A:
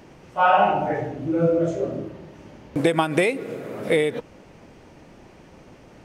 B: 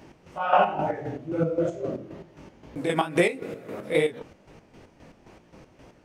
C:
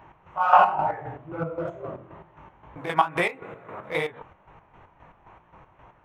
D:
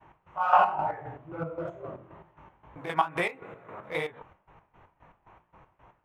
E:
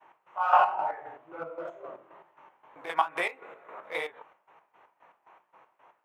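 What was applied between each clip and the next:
chorus 2.2 Hz, delay 17 ms, depth 6.3 ms; chopper 3.8 Hz, depth 60%, duty 45%; gain +1.5 dB
Wiener smoothing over 9 samples; ten-band EQ 250 Hz -11 dB, 500 Hz -6 dB, 1000 Hz +11 dB, 8000 Hz -7 dB
expander -50 dBFS; gain -4.5 dB
HPF 480 Hz 12 dB/oct

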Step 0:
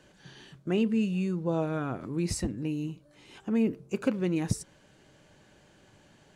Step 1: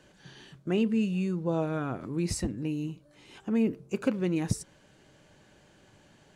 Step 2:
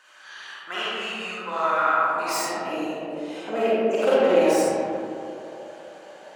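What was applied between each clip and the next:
nothing audible
self-modulated delay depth 0.1 ms; digital reverb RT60 2.9 s, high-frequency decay 0.35×, pre-delay 10 ms, DRR -9.5 dB; high-pass sweep 1200 Hz -> 600 Hz, 1.92–3.2; gain +3 dB

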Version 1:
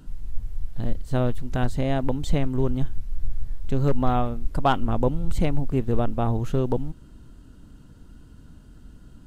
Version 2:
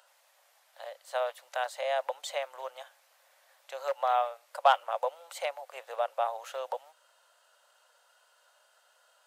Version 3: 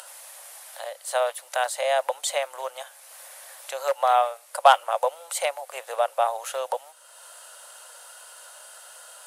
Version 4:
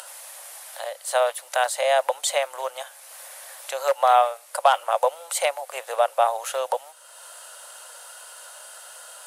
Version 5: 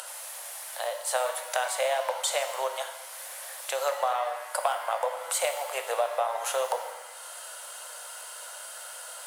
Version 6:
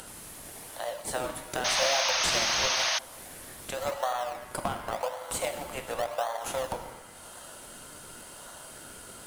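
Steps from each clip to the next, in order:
Chebyshev high-pass 540 Hz, order 6
in parallel at -2 dB: upward compressor, threshold -38 dBFS; on the sum: bell 10000 Hz +14.5 dB 0.8 oct; gain +2 dB
maximiser +8 dB; gain -5 dB
compressor 6:1, threshold -25 dBFS, peak gain reduction 12.5 dB; shimmer reverb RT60 1.1 s, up +7 st, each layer -8 dB, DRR 5.5 dB
in parallel at -5 dB: decimation with a swept rate 33×, swing 100% 0.91 Hz; on the sum: painted sound noise, 1.64–2.99, 590–6600 Hz -22 dBFS; gain -5.5 dB

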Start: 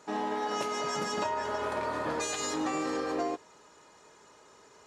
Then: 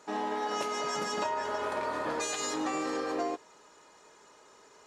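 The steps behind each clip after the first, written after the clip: bell 98 Hz -7.5 dB 1.8 oct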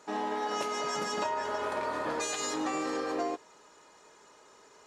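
nothing audible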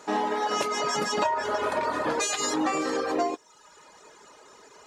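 reverb removal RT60 0.84 s; gain +8 dB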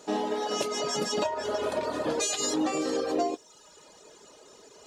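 band shelf 1400 Hz -8 dB; reverse; upward compressor, threshold -48 dBFS; reverse

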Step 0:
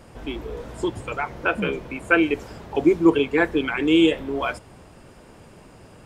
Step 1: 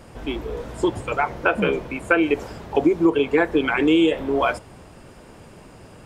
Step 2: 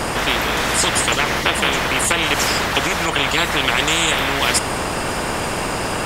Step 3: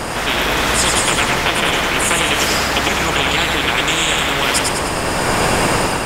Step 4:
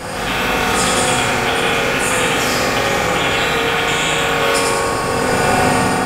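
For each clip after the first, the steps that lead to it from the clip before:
dynamic EQ 670 Hz, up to +5 dB, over -33 dBFS, Q 0.72; compressor 6:1, threshold -16 dBFS, peak gain reduction 9 dB; gain +2.5 dB
spectral compressor 10:1; gain +2.5 dB
split-band echo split 310 Hz, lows 0.244 s, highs 0.102 s, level -3 dB; AGC; gain -1 dB
reverb RT60 2.4 s, pre-delay 3 ms, DRR -7 dB; gain -6.5 dB

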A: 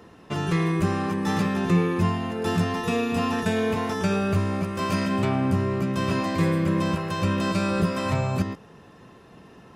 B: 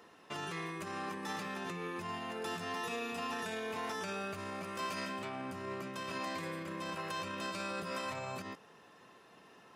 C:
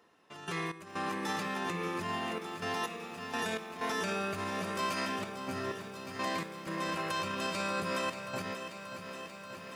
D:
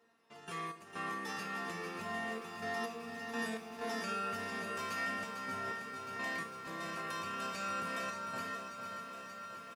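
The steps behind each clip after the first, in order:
limiter -21 dBFS, peak gain reduction 10 dB; HPF 770 Hz 6 dB/oct; gain -4.5 dB
step gate "..x.xxxxxx.x" 63 bpm -12 dB; lo-fi delay 0.583 s, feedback 80%, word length 11-bit, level -10.5 dB; gain +5 dB
resonator 230 Hz, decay 0.33 s, harmonics all, mix 90%; on a send: feedback echo 0.452 s, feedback 47%, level -8 dB; on the sum: gain +7 dB

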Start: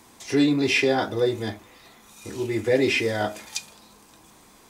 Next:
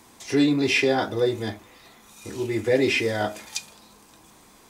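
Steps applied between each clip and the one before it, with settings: nothing audible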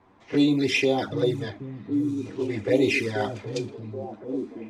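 envelope flanger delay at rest 11.4 ms, full sweep at -17 dBFS; delay with a stepping band-pass 0.775 s, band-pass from 150 Hz, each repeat 0.7 oct, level -1 dB; low-pass opened by the level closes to 1500 Hz, open at -19 dBFS

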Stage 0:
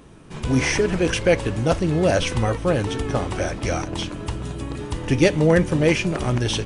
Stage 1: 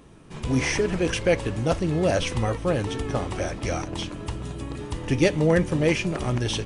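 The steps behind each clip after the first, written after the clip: notch 1500 Hz, Q 26; gain -3.5 dB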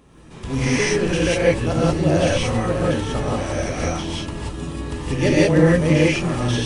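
non-linear reverb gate 0.21 s rising, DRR -6.5 dB; gain -2.5 dB

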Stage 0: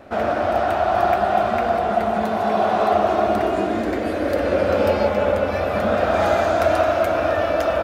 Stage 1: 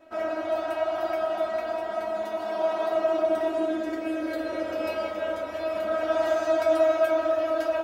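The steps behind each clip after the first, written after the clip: low shelf 190 Hz -8.5 dB; resonator 320 Hz, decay 0.18 s, harmonics all, mix 100%; gain +4.5 dB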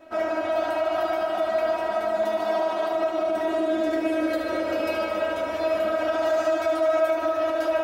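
limiter -22.5 dBFS, peak gain reduction 11 dB; thinning echo 74 ms, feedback 77%, high-pass 210 Hz, level -8.5 dB; gain +5 dB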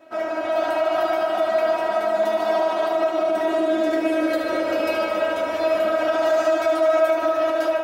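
HPF 170 Hz 6 dB/oct; AGC gain up to 4 dB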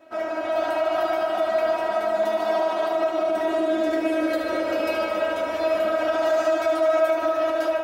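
bell 62 Hz +8.5 dB 0.31 oct; gain -2 dB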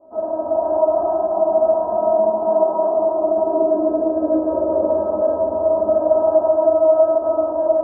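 elliptic low-pass 1000 Hz, stop band 50 dB; shoebox room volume 79 m³, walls mixed, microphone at 1.3 m

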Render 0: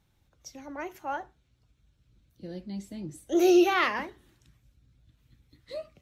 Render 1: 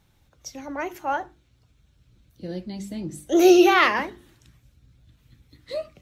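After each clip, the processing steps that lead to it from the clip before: notches 50/100/150/200/250/300/350 Hz; gain +7.5 dB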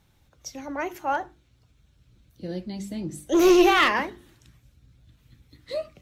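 one-sided clip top -16 dBFS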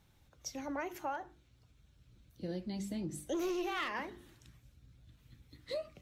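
compressor 8:1, threshold -30 dBFS, peak gain reduction 16.5 dB; gain -4.5 dB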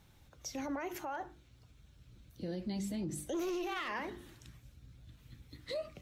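limiter -35.5 dBFS, peak gain reduction 9 dB; gain +4.5 dB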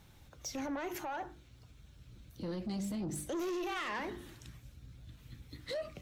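soft clip -36.5 dBFS, distortion -15 dB; gain +3.5 dB

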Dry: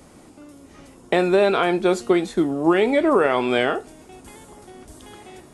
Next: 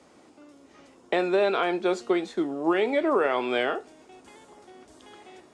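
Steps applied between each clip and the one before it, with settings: HPF 51 Hz; three-band isolator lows -12 dB, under 250 Hz, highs -24 dB, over 7800 Hz; gain -5 dB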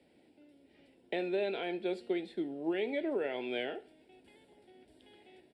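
fixed phaser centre 2800 Hz, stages 4; feedback echo 70 ms, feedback 46%, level -23 dB; gain -8 dB

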